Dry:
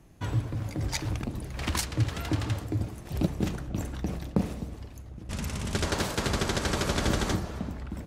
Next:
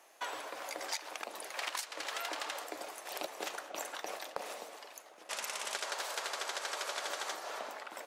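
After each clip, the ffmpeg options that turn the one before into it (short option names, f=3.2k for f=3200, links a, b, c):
-af "highpass=f=570:w=0.5412,highpass=f=570:w=1.3066,acompressor=threshold=-40dB:ratio=10,volume=5dB"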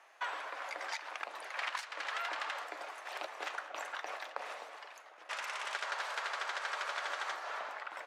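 -filter_complex "[0:a]asplit=2[a][b];[b]asoftclip=type=tanh:threshold=-33.5dB,volume=-7dB[c];[a][c]amix=inputs=2:normalize=0,bandpass=f=1.5k:t=q:w=0.99:csg=0,volume=1.5dB"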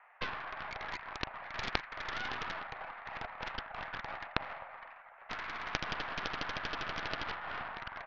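-af "highpass=f=390:t=q:w=0.5412,highpass=f=390:t=q:w=1.307,lowpass=f=2.3k:t=q:w=0.5176,lowpass=f=2.3k:t=q:w=0.7071,lowpass=f=2.3k:t=q:w=1.932,afreqshift=82,aeval=exprs='0.0841*(cos(1*acos(clip(val(0)/0.0841,-1,1)))-cos(1*PI/2))+0.0335*(cos(2*acos(clip(val(0)/0.0841,-1,1)))-cos(2*PI/2))+0.0376*(cos(3*acos(clip(val(0)/0.0841,-1,1)))-cos(3*PI/2))':c=same,volume=10.5dB"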